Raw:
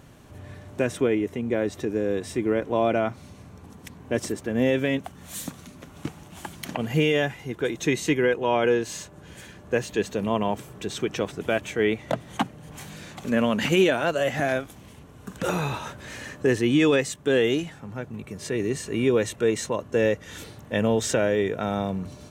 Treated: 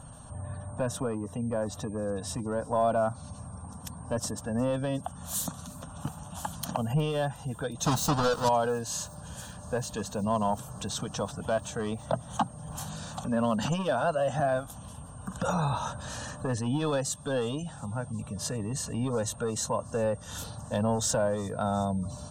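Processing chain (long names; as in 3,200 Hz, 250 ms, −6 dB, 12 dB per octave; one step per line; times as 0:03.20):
0:07.85–0:08.49: each half-wave held at its own peak
gate on every frequency bin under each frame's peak −30 dB strong
dynamic equaliser 2,400 Hz, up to −4 dB, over −39 dBFS, Q 1.4
in parallel at −1 dB: downward compressor, threshold −32 dBFS, peak gain reduction 16 dB
on the sum: steady tone 8,600 Hz −52 dBFS
soft clipping −12.5 dBFS, distortion −19 dB
phaser with its sweep stopped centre 890 Hz, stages 4
delay with a high-pass on its return 361 ms, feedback 85%, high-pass 4,400 Hz, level −23 dB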